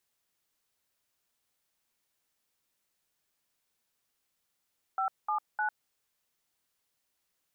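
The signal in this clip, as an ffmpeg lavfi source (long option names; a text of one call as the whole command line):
ffmpeg -f lavfi -i "aevalsrc='0.0316*clip(min(mod(t,0.304),0.101-mod(t,0.304))/0.002,0,1)*(eq(floor(t/0.304),0)*(sin(2*PI*770*mod(t,0.304))+sin(2*PI*1336*mod(t,0.304)))+eq(floor(t/0.304),1)*(sin(2*PI*852*mod(t,0.304))+sin(2*PI*1209*mod(t,0.304)))+eq(floor(t/0.304),2)*(sin(2*PI*852*mod(t,0.304))+sin(2*PI*1477*mod(t,0.304))))':duration=0.912:sample_rate=44100" out.wav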